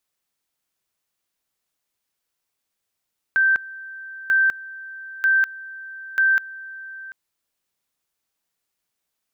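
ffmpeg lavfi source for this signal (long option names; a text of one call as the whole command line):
ffmpeg -f lavfi -i "aevalsrc='pow(10,(-14-19.5*gte(mod(t,0.94),0.2))/20)*sin(2*PI*1560*t)':duration=3.76:sample_rate=44100" out.wav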